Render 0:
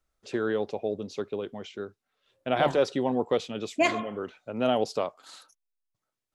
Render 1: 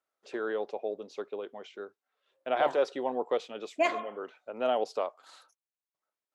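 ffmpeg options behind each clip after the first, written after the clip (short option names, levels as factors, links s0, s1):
-af "highpass=480,highshelf=f=2400:g=-10"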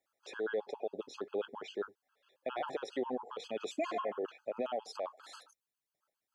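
-af "acompressor=threshold=0.0282:ratio=5,alimiter=level_in=2.37:limit=0.0631:level=0:latency=1:release=23,volume=0.422,afftfilt=real='re*gt(sin(2*PI*7.4*pts/sr)*(1-2*mod(floor(b*sr/1024/840),2)),0)':imag='im*gt(sin(2*PI*7.4*pts/sr)*(1-2*mod(floor(b*sr/1024/840),2)),0)':win_size=1024:overlap=0.75,volume=2"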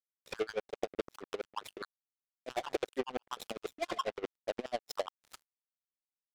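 -af "acompressor=threshold=0.0112:ratio=10,acrusher=bits=6:mix=0:aa=0.5,aeval=exprs='val(0)*pow(10,-24*(0.5-0.5*cos(2*PI*12*n/s))/20)':c=same,volume=3.76"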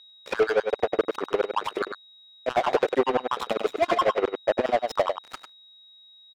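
-filter_complex "[0:a]aeval=exprs='val(0)+0.000708*sin(2*PI*3800*n/s)':c=same,asplit=2[s0][s1];[s1]adelay=99.13,volume=0.282,highshelf=f=4000:g=-2.23[s2];[s0][s2]amix=inputs=2:normalize=0,asplit=2[s3][s4];[s4]highpass=f=720:p=1,volume=12.6,asoftclip=type=tanh:threshold=0.126[s5];[s3][s5]amix=inputs=2:normalize=0,lowpass=f=1100:p=1,volume=0.501,volume=2.66"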